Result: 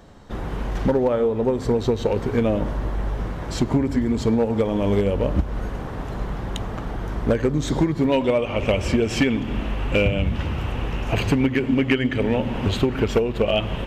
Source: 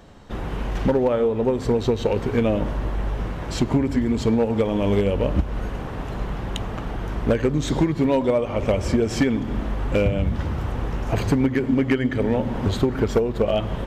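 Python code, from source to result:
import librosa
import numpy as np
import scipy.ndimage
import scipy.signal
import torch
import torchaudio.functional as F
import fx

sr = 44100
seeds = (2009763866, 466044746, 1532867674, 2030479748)

y = fx.peak_eq(x, sr, hz=2700.0, db=fx.steps((0.0, -3.5), (8.12, 11.0)), octaves=0.54)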